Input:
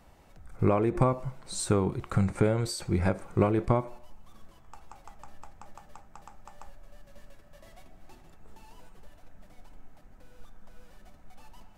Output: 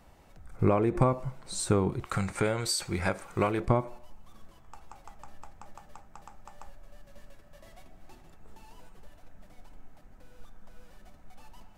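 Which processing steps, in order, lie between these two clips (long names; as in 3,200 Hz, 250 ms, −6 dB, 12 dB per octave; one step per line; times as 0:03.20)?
0:02.05–0:03.60: tilt shelving filter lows −6.5 dB, about 740 Hz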